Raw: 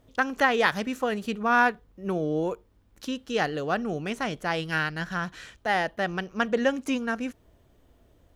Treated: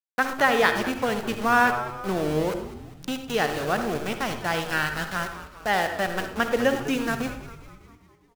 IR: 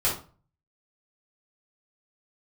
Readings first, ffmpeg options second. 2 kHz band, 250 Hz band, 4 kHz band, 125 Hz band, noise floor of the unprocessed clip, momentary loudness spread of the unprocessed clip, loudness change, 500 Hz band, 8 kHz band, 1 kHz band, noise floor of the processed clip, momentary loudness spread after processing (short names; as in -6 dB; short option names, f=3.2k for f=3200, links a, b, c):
+2.0 dB, +1.0 dB, +3.0 dB, +2.0 dB, -62 dBFS, 12 LU, +2.0 dB, +2.5 dB, +7.5 dB, +2.5 dB, -57 dBFS, 13 LU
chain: -filter_complex "[0:a]aeval=exprs='val(0)*gte(abs(val(0)),0.0282)':c=same,asplit=7[a][b][c][d][e][f][g];[b]adelay=201,afreqshift=-110,volume=-14dB[h];[c]adelay=402,afreqshift=-220,volume=-18.9dB[i];[d]adelay=603,afreqshift=-330,volume=-23.8dB[j];[e]adelay=804,afreqshift=-440,volume=-28.6dB[k];[f]adelay=1005,afreqshift=-550,volume=-33.5dB[l];[g]adelay=1206,afreqshift=-660,volume=-38.4dB[m];[a][h][i][j][k][l][m]amix=inputs=7:normalize=0,asplit=2[n][o];[1:a]atrim=start_sample=2205,adelay=57[p];[o][p]afir=irnorm=-1:irlink=0,volume=-19dB[q];[n][q]amix=inputs=2:normalize=0,volume=1.5dB"